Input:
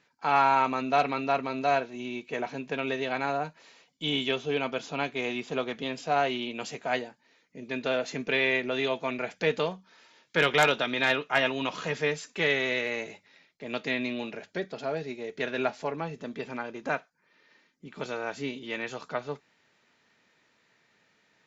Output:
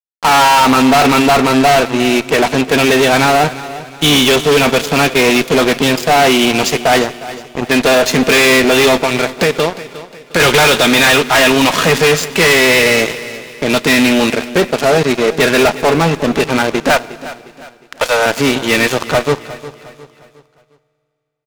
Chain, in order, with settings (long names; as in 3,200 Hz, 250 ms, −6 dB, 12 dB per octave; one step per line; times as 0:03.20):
0:09.00–0:10.40: downward compressor 10 to 1, threshold −32 dBFS, peak gain reduction 12.5 dB
0:16.90–0:18.26: Butterworth high-pass 470 Hz 96 dB per octave
fuzz pedal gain 37 dB, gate −42 dBFS
on a send: repeating echo 358 ms, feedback 41%, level −16 dB
on the sum: four-comb reverb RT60 2.4 s, combs from 27 ms, DRR 19 dB
level +6 dB